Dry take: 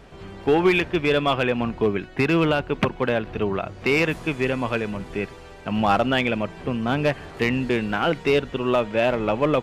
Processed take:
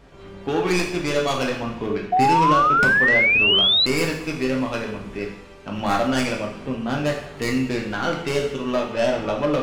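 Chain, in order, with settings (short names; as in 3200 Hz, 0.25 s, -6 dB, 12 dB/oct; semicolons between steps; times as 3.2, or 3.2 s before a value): tracing distortion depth 0.17 ms; two-slope reverb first 0.65 s, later 2 s, from -18 dB, DRR -0.5 dB; painted sound rise, 2.12–3.86, 710–4100 Hz -12 dBFS; gain -5 dB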